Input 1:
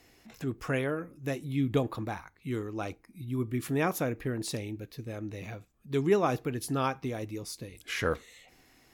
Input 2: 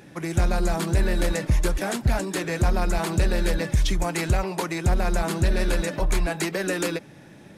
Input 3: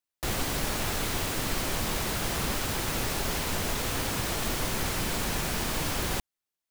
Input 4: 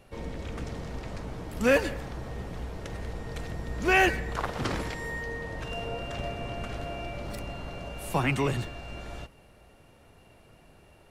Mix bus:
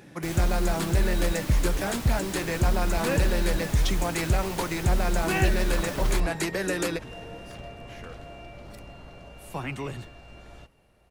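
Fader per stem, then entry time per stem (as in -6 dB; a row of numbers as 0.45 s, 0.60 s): -16.0 dB, -2.0 dB, -8.0 dB, -7.0 dB; 0.00 s, 0.00 s, 0.00 s, 1.40 s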